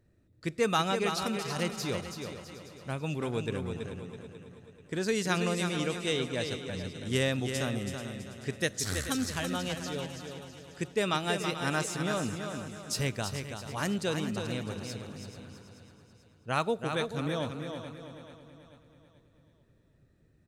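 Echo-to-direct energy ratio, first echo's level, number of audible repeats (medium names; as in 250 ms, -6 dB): -5.0 dB, -7.0 dB, 12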